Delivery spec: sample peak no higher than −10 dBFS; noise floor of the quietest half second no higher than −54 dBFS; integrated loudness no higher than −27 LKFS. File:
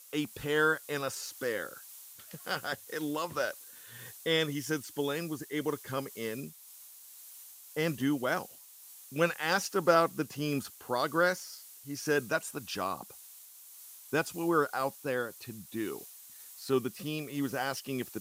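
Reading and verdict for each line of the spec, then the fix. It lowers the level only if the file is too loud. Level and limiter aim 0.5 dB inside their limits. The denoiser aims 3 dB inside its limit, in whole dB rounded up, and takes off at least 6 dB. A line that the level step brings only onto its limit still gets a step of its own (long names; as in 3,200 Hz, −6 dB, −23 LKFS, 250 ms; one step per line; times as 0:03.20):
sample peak −12.0 dBFS: in spec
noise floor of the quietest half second −53 dBFS: out of spec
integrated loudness −32.5 LKFS: in spec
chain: broadband denoise 6 dB, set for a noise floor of −53 dBFS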